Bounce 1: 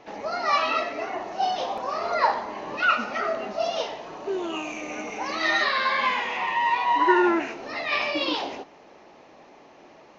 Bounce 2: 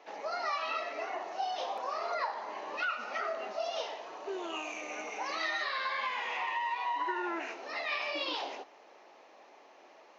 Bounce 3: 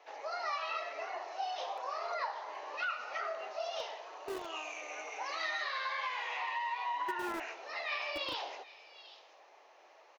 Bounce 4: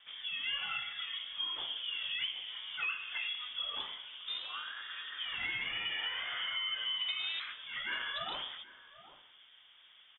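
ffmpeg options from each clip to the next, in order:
-af "highpass=460,acompressor=threshold=-26dB:ratio=6,volume=-5dB"
-filter_complex "[0:a]acrossover=split=370|2200[a][b][c];[a]acrusher=bits=6:mix=0:aa=0.000001[d];[c]aecho=1:1:776:0.2[e];[d][b][e]amix=inputs=3:normalize=0,volume=-2.5dB"
-af "asoftclip=type=hard:threshold=-27dB,lowpass=f=3.4k:t=q:w=0.5098,lowpass=f=3.4k:t=q:w=0.6013,lowpass=f=3.4k:t=q:w=0.9,lowpass=f=3.4k:t=q:w=2.563,afreqshift=-4000"

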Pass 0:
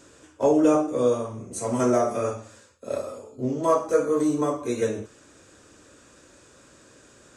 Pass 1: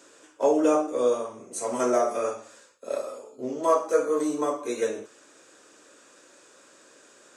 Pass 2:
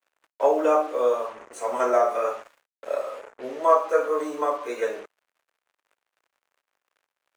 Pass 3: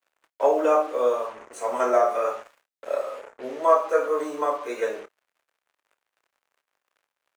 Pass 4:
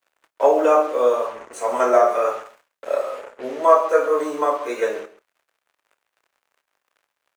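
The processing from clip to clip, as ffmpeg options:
-af "highpass=360"
-filter_complex "[0:a]acrusher=bits=6:mix=0:aa=0.5,acrossover=split=480 2700:gain=0.141 1 0.178[a][b][c];[a][b][c]amix=inputs=3:normalize=0,volume=5.5dB"
-filter_complex "[0:a]asplit=2[a][b];[b]adelay=28,volume=-13.5dB[c];[a][c]amix=inputs=2:normalize=0"
-af "aecho=1:1:134:0.158,volume=4.5dB"

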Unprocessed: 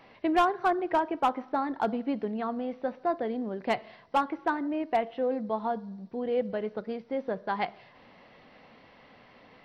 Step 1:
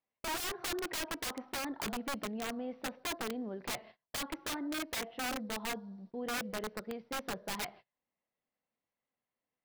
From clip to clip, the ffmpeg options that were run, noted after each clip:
-af "aeval=exprs='(mod(17.8*val(0)+1,2)-1)/17.8':c=same,agate=range=-32dB:threshold=-46dB:ratio=16:detection=peak,volume=-6.5dB"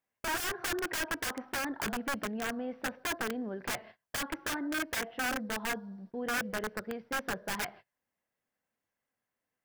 -af "equalizer=f=100:t=o:w=0.33:g=5,equalizer=f=1.6k:t=o:w=0.33:g=8,equalizer=f=4k:t=o:w=0.33:g=-5,volume=2.5dB"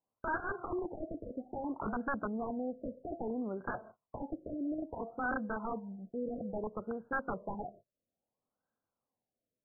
-af "afftfilt=real='re*lt(b*sr/1024,680*pow(1700/680,0.5+0.5*sin(2*PI*0.6*pts/sr)))':imag='im*lt(b*sr/1024,680*pow(1700/680,0.5+0.5*sin(2*PI*0.6*pts/sr)))':win_size=1024:overlap=0.75"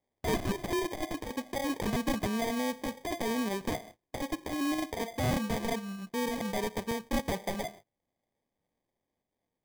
-af "acrusher=samples=32:mix=1:aa=0.000001,volume=5.5dB"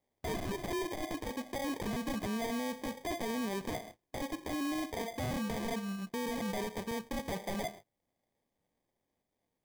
-af "alimiter=level_in=7.5dB:limit=-24dB:level=0:latency=1:release=16,volume=-7.5dB,volume=1dB"

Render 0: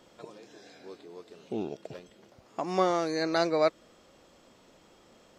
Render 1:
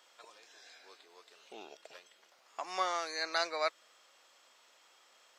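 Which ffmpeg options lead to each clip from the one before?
-af "highpass=1.1k"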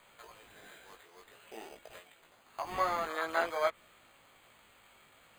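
-filter_complex "[0:a]acrusher=samples=8:mix=1:aa=0.000001,flanger=delay=17.5:depth=2.2:speed=0.53,acrossover=split=3000[a][b];[b]acompressor=threshold=-56dB:ratio=4:attack=1:release=60[c];[a][c]amix=inputs=2:normalize=0,volume=5.5dB"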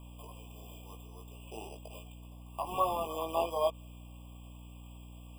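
-af "highshelf=f=9.1k:g=10,aeval=exprs='val(0)+0.00316*(sin(2*PI*60*n/s)+sin(2*PI*2*60*n/s)/2+sin(2*PI*3*60*n/s)/3+sin(2*PI*4*60*n/s)/4+sin(2*PI*5*60*n/s)/5)':c=same,afftfilt=real='re*eq(mod(floor(b*sr/1024/1200),2),0)':imag='im*eq(mod(floor(b*sr/1024/1200),2),0)':win_size=1024:overlap=0.75,volume=2dB"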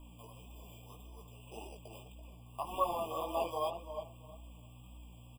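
-filter_complex "[0:a]asplit=2[a][b];[b]adelay=335,lowpass=f=3.1k:p=1,volume=-9.5dB,asplit=2[c][d];[d]adelay=335,lowpass=f=3.1k:p=1,volume=0.21,asplit=2[e][f];[f]adelay=335,lowpass=f=3.1k:p=1,volume=0.21[g];[a][c][e][g]amix=inputs=4:normalize=0,flanger=delay=3.1:depth=6.2:regen=18:speed=1.8:shape=sinusoidal"

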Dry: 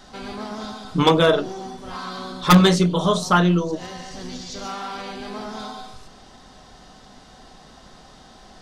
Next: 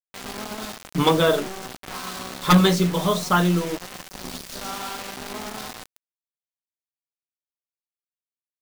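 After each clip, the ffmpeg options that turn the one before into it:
-af "acrusher=bits=4:mix=0:aa=0.000001,volume=-2.5dB"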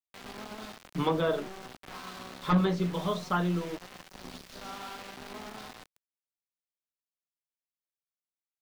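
-filter_complex "[0:a]acrossover=split=4800[a][b];[b]acompressor=threshold=-44dB:ratio=4:attack=1:release=60[c];[a][c]amix=inputs=2:normalize=0,acrossover=split=380|1600[d][e][f];[f]alimiter=limit=-22dB:level=0:latency=1:release=273[g];[d][e][g]amix=inputs=3:normalize=0,volume=-9dB"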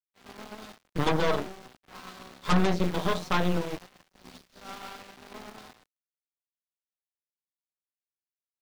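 -af "agate=range=-33dB:threshold=-39dB:ratio=3:detection=peak,aeval=exprs='0.211*(cos(1*acos(clip(val(0)/0.211,-1,1)))-cos(1*PI/2))+0.0473*(cos(8*acos(clip(val(0)/0.211,-1,1)))-cos(8*PI/2))':c=same"

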